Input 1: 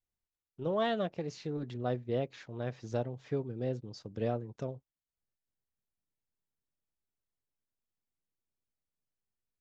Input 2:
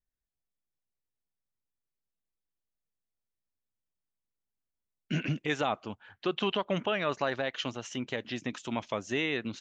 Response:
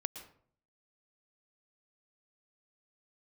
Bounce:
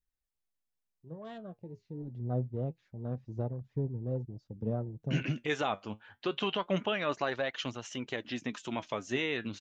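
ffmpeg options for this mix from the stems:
-filter_complex "[0:a]afwtdn=0.00708,bass=f=250:g=10,treble=f=4000:g=-2,dynaudnorm=f=350:g=9:m=5.01,adelay=450,volume=0.211[s0];[1:a]volume=1.33[s1];[s0][s1]amix=inputs=2:normalize=0,flanger=delay=0.4:depth=9.9:regen=66:speed=0.26:shape=triangular"

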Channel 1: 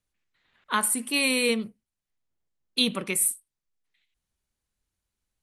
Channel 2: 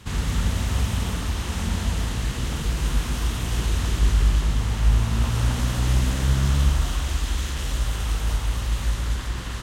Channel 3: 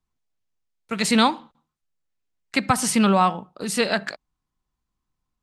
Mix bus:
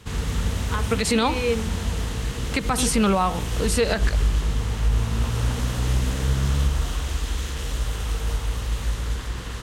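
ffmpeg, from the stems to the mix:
-filter_complex "[0:a]lowpass=3300,volume=0.708[s0];[1:a]volume=0.841[s1];[2:a]volume=1.33[s2];[s0][s1][s2]amix=inputs=3:normalize=0,equalizer=f=460:t=o:w=0.21:g=8.5,alimiter=limit=0.266:level=0:latency=1:release=103"

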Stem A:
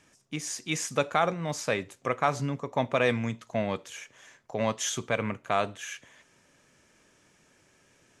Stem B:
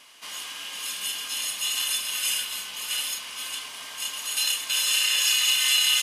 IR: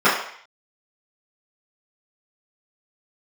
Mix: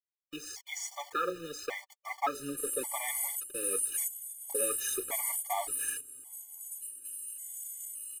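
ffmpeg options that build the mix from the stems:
-filter_complex "[0:a]highpass=f=220:w=0.5412,highpass=f=220:w=1.3066,acrusher=bits=6:mix=0:aa=0.000001,flanger=delay=2.1:depth=4.8:regen=28:speed=1.8:shape=triangular,volume=0.75,asplit=2[s0][s1];[1:a]firequalizer=gain_entry='entry(120,0);entry(210,9);entry(440,-5);entry(1300,-20);entry(5400,-24);entry(8100,11)':delay=0.05:min_phase=1,acompressor=threshold=0.0141:ratio=2.5,adelay=2350,volume=1.19[s2];[s1]apad=whole_len=373592[s3];[s2][s3]sidechaingate=range=0.282:threshold=0.00316:ratio=16:detection=peak[s4];[s0][s4]amix=inputs=2:normalize=0,aecho=1:1:2.4:0.96,afftfilt=real='re*gt(sin(2*PI*0.88*pts/sr)*(1-2*mod(floor(b*sr/1024/600),2)),0)':imag='im*gt(sin(2*PI*0.88*pts/sr)*(1-2*mod(floor(b*sr/1024/600),2)),0)':win_size=1024:overlap=0.75"

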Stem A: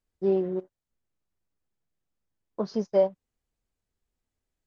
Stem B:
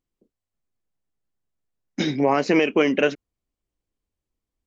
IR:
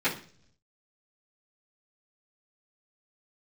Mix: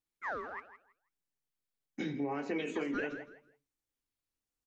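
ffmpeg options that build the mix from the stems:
-filter_complex "[0:a]highpass=f=1500:p=1,equalizer=f=2600:t=o:w=1.4:g=-4.5,aeval=exprs='val(0)*sin(2*PI*1900*n/s+1900*0.6/1.2*sin(2*PI*1.2*n/s))':c=same,volume=1.19,asplit=2[s0][s1];[s1]volume=0.224[s2];[1:a]equalizer=f=4900:w=1.3:g=-10,volume=0.188,asplit=3[s3][s4][s5];[s4]volume=0.237[s6];[s5]volume=0.0944[s7];[2:a]atrim=start_sample=2205[s8];[s6][s8]afir=irnorm=-1:irlink=0[s9];[s2][s7]amix=inputs=2:normalize=0,aecho=0:1:163|326|489:1|0.21|0.0441[s10];[s0][s3][s9][s10]amix=inputs=4:normalize=0,acompressor=threshold=0.0251:ratio=6"

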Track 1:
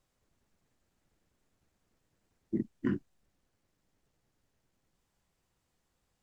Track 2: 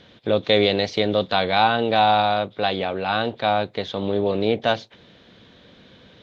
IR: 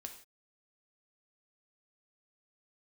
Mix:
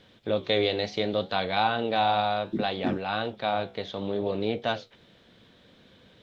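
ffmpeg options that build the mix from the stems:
-filter_complex "[0:a]equalizer=f=5300:t=o:w=0.22:g=9,volume=1.26[s0];[1:a]flanger=delay=9.4:depth=8.4:regen=-73:speed=0.65:shape=sinusoidal,volume=0.75[s1];[s0][s1]amix=inputs=2:normalize=0"

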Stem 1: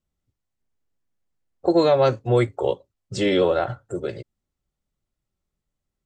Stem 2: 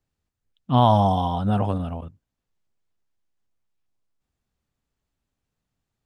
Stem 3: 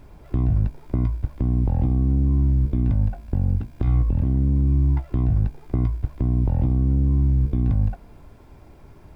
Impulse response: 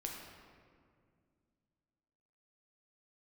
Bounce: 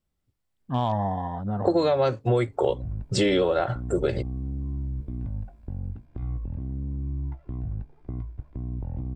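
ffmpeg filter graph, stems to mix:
-filter_complex "[0:a]equalizer=f=6400:w=5.1:g=-5,dynaudnorm=f=140:g=9:m=1.78,volume=1.19[s0];[1:a]afwtdn=0.0224,volume=0.447[s1];[2:a]lowpass=f=1800:p=1,adelay=2350,volume=0.251[s2];[s0][s1][s2]amix=inputs=3:normalize=0,acompressor=threshold=0.112:ratio=6"

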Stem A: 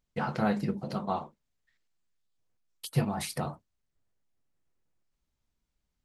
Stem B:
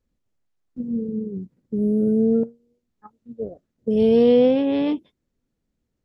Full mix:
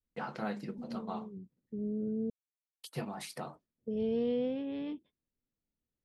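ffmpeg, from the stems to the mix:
-filter_complex "[0:a]agate=range=0.158:threshold=0.00224:ratio=16:detection=peak,highpass=220,highshelf=f=9900:g=-7.5,volume=0.501[s0];[1:a]lowpass=4400,volume=0.178,asplit=3[s1][s2][s3];[s1]atrim=end=2.3,asetpts=PTS-STARTPTS,afade=t=out:st=2.296:d=0.004:c=hsin[s4];[s2]atrim=start=2.3:end=3.54,asetpts=PTS-STARTPTS,volume=0[s5];[s3]atrim=start=3.54,asetpts=PTS-STARTPTS,afade=t=in:d=0.004:c=hsin[s6];[s4][s5][s6]concat=n=3:v=0:a=1[s7];[s0][s7]amix=inputs=2:normalize=0,adynamicequalizer=threshold=0.00447:dfrequency=770:dqfactor=0.77:tfrequency=770:tqfactor=0.77:attack=5:release=100:ratio=0.375:range=3.5:mode=cutabove:tftype=bell"

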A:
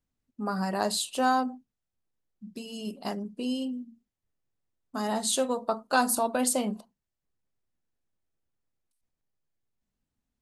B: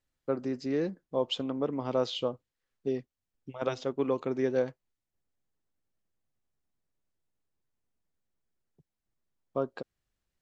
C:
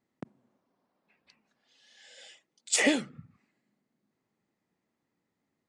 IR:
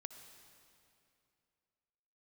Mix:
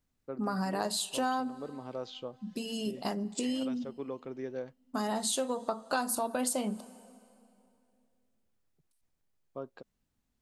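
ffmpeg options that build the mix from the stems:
-filter_complex "[0:a]volume=1.26,asplit=3[s0][s1][s2];[s1]volume=0.299[s3];[1:a]volume=0.316[s4];[2:a]adelay=650,volume=0.335[s5];[s2]apad=whole_len=279216[s6];[s5][s6]sidechaincompress=threshold=0.0141:ratio=8:attack=11:release=159[s7];[3:a]atrim=start_sample=2205[s8];[s3][s8]afir=irnorm=-1:irlink=0[s9];[s0][s4][s7][s9]amix=inputs=4:normalize=0,acompressor=threshold=0.0282:ratio=3"

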